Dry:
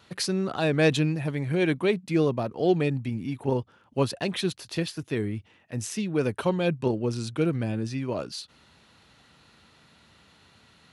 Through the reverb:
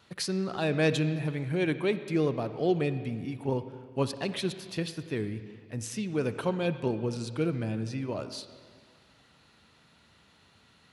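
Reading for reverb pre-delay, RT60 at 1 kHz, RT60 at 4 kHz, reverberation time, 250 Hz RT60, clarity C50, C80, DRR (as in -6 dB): 37 ms, 1.9 s, 1.8 s, 1.9 s, 1.9 s, 11.0 dB, 12.0 dB, 11.0 dB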